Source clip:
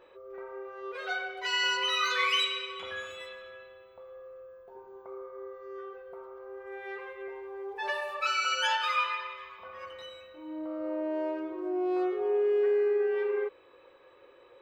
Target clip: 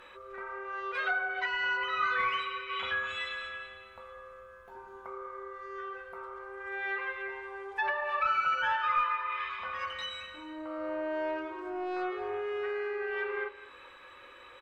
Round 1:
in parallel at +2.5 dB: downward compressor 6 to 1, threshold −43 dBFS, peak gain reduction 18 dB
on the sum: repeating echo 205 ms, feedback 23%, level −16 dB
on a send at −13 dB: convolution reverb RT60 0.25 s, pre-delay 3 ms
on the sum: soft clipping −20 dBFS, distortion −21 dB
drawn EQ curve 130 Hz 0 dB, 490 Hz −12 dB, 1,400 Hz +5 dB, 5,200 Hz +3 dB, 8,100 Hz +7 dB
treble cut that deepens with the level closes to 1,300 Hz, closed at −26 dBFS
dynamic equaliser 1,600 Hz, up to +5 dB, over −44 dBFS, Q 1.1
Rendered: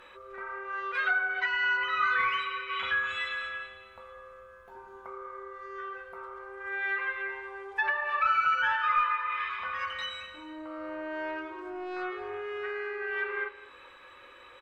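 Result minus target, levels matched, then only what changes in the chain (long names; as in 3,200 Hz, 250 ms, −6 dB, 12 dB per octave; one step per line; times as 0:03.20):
500 Hz band −5.5 dB
change: dynamic equaliser 610 Hz, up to +5 dB, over −44 dBFS, Q 1.1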